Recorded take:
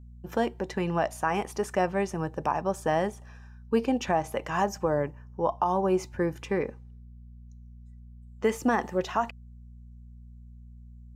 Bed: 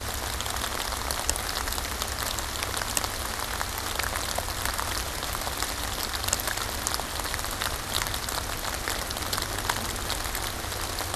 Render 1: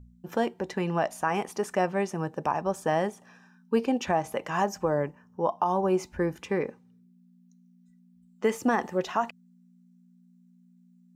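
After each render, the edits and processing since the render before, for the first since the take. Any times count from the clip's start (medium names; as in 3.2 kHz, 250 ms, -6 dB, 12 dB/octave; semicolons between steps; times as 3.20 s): de-hum 60 Hz, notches 2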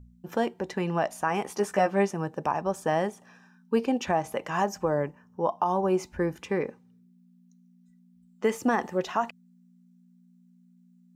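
1.43–2.11 s: doubling 15 ms -3 dB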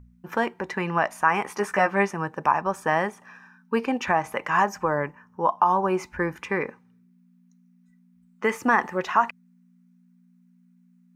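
high-order bell 1.5 kHz +9.5 dB; band-stop 7.4 kHz, Q 20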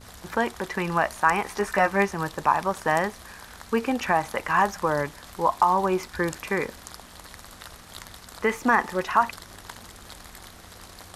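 add bed -14 dB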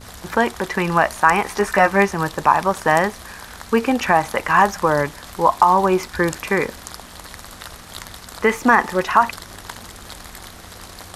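trim +7 dB; peak limiter -1 dBFS, peak gain reduction 1.5 dB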